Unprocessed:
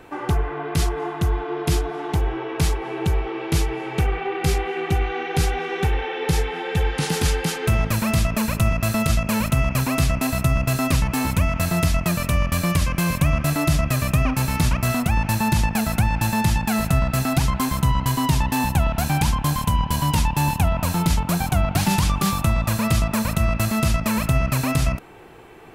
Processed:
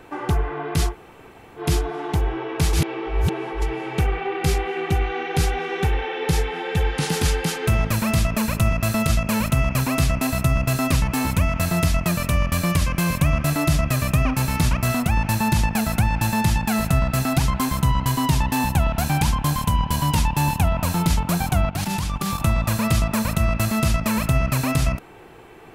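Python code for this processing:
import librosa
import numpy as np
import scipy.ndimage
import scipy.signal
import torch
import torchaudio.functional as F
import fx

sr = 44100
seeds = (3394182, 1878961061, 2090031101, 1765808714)

y = fx.level_steps(x, sr, step_db=12, at=(21.7, 22.4))
y = fx.edit(y, sr, fx.room_tone_fill(start_s=0.91, length_s=0.69, crossfade_s=0.1),
    fx.reverse_span(start_s=2.73, length_s=0.89), tone=tone)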